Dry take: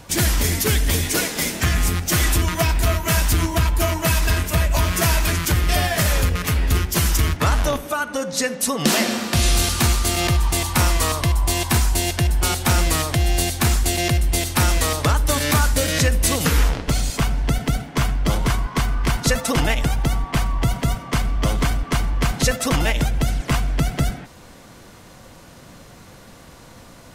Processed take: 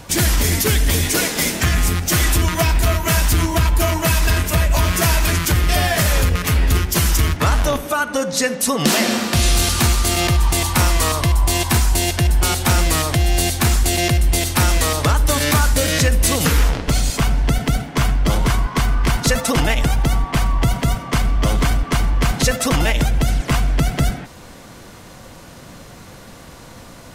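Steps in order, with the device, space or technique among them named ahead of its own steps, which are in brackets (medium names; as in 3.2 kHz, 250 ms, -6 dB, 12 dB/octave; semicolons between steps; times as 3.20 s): clipper into limiter (hard clipper -10 dBFS, distortion -35 dB; peak limiter -12.5 dBFS, peak gain reduction 2.5 dB); trim +4.5 dB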